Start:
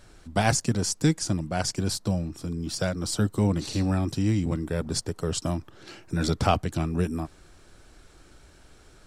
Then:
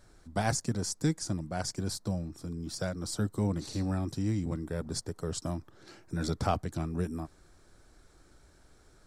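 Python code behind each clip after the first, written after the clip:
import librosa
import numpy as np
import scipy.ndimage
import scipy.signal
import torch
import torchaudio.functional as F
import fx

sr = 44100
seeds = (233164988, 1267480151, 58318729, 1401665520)

y = fx.peak_eq(x, sr, hz=2800.0, db=-8.0, octaves=0.55)
y = F.gain(torch.from_numpy(y), -6.5).numpy()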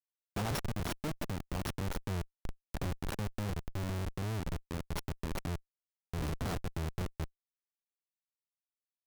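y = np.r_[np.sort(x[:len(x) // 8 * 8].reshape(-1, 8), axis=1).ravel(), x[len(x) // 8 * 8:]]
y = fx.schmitt(y, sr, flips_db=-30.5)
y = fx.rider(y, sr, range_db=4, speed_s=2.0)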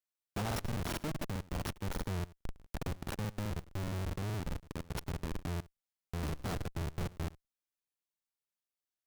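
y = x + 10.0 ** (-20.0 / 20.0) * np.pad(x, (int(108 * sr / 1000.0), 0))[:len(x)]
y = fx.buffer_crackle(y, sr, first_s=0.47, period_s=0.21, block=2048, kind='repeat')
y = F.gain(torch.from_numpy(y), -1.0).numpy()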